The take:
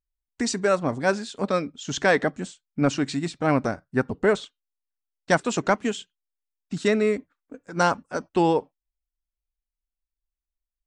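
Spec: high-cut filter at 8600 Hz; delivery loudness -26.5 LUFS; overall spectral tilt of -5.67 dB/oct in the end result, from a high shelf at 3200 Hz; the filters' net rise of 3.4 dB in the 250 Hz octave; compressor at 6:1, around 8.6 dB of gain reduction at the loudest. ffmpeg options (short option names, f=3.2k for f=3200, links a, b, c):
-af "lowpass=8.6k,equalizer=f=250:t=o:g=4.5,highshelf=f=3.2k:g=-8,acompressor=threshold=-23dB:ratio=6,volume=3.5dB"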